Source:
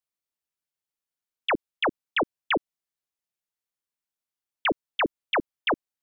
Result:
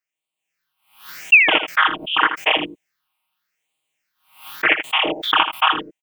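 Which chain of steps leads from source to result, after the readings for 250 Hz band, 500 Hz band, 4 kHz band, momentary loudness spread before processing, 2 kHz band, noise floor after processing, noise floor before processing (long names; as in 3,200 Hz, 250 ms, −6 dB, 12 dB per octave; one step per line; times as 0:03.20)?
+2.5 dB, +2.5 dB, +13.0 dB, 2 LU, +14.0 dB, below −85 dBFS, below −85 dBFS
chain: spectrum averaged block by block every 100 ms
low-shelf EQ 280 Hz −8 dB
comb filter 6.4 ms, depth 82%
sound drawn into the spectrogram fall, 0:01.32–0:01.58, 1,300–2,800 Hz −29 dBFS
automatic gain control gain up to 11 dB
flat-topped bell 1,400 Hz +9 dB 2.5 octaves
all-pass phaser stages 6, 0.86 Hz, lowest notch 450–1,600 Hz
on a send: single-tap delay 80 ms −10 dB
on the sum: background raised ahead of every attack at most 120 dB per second
level +3 dB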